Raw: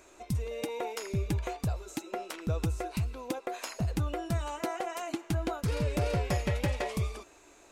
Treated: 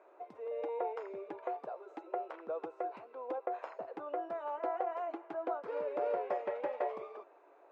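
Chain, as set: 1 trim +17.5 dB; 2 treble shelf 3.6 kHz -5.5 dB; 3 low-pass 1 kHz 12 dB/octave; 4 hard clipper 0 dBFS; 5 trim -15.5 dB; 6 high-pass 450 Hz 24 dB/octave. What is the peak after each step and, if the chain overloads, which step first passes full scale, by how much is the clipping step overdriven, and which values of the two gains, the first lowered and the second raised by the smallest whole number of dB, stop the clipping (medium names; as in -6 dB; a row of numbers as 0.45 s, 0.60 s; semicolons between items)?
-3.5 dBFS, -4.0 dBFS, -4.0 dBFS, -4.0 dBFS, -19.5 dBFS, -21.0 dBFS; nothing clips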